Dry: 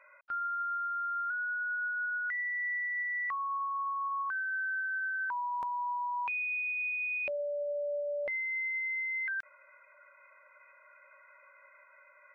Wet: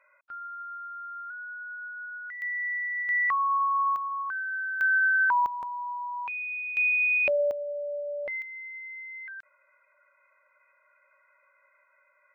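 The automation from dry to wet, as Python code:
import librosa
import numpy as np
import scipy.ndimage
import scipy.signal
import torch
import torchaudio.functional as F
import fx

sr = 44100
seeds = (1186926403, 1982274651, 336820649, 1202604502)

y = fx.gain(x, sr, db=fx.steps((0.0, -5.0), (2.42, 3.0), (3.09, 9.0), (3.96, 2.0), (4.81, 11.5), (5.46, 0.0), (6.77, 10.0), (7.51, 1.0), (8.42, -6.5)))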